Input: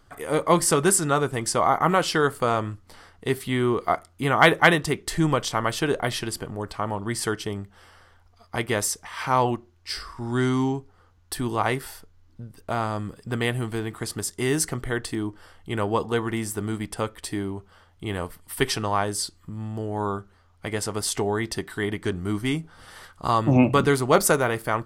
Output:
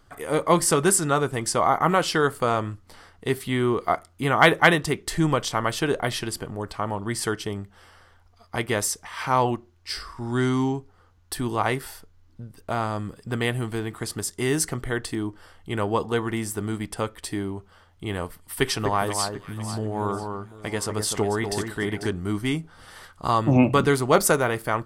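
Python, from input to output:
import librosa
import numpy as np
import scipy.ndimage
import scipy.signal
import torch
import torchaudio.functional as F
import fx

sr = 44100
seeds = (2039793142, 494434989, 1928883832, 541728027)

y = fx.echo_alternate(x, sr, ms=247, hz=1700.0, feedback_pct=57, wet_db=-5.5, at=(18.61, 22.06), fade=0.02)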